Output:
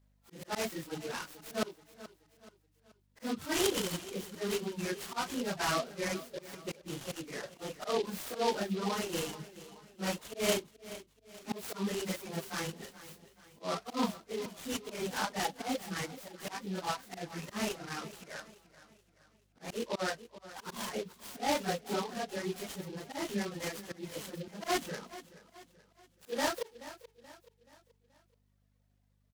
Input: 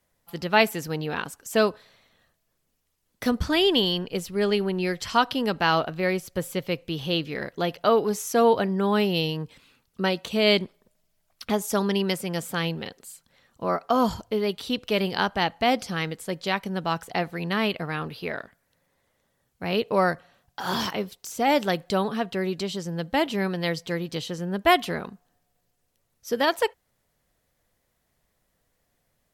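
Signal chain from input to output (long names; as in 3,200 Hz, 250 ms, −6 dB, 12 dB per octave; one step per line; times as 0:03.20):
random phases in long frames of 100 ms
high-pass filter 150 Hz 24 dB per octave
mains hum 50 Hz, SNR 33 dB
volume swells 135 ms
reverb reduction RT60 1.5 s
repeating echo 429 ms, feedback 44%, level −16 dB
short delay modulated by noise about 3,300 Hz, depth 0.065 ms
level −8 dB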